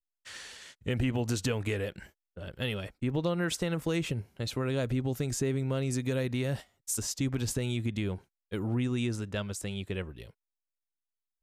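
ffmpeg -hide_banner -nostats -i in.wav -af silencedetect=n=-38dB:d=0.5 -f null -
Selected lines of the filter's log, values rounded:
silence_start: 10.23
silence_end: 11.42 | silence_duration: 1.20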